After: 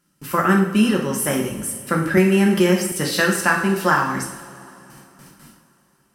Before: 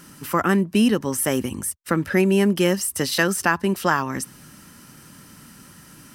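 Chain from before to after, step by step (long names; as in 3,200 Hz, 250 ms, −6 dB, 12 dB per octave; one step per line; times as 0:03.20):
noise gate with hold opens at −34 dBFS
convolution reverb, pre-delay 3 ms, DRR −0.5 dB
dynamic equaliser 1,400 Hz, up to +4 dB, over −31 dBFS, Q 1.1
0:02.17–0:02.92: multiband upward and downward compressor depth 70%
level −2.5 dB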